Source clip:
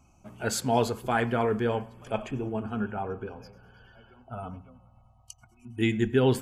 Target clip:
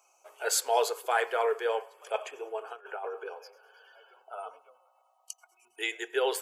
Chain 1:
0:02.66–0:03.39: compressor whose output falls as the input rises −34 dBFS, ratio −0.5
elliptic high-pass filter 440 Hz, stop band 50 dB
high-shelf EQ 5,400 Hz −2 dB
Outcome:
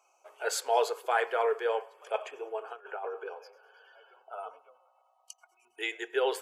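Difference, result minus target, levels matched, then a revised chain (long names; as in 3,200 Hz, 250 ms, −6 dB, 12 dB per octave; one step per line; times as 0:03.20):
8,000 Hz band −5.5 dB
0:02.66–0:03.39: compressor whose output falls as the input rises −34 dBFS, ratio −0.5
elliptic high-pass filter 440 Hz, stop band 50 dB
high-shelf EQ 5,400 Hz +8 dB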